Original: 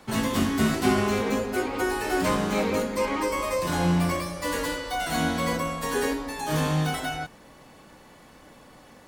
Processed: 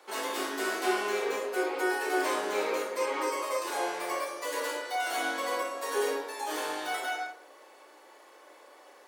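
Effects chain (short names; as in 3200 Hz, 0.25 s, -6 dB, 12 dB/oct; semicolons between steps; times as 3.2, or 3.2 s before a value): Chebyshev high-pass 360 Hz, order 4; reverb RT60 0.45 s, pre-delay 22 ms, DRR 0.5 dB; gain -4.5 dB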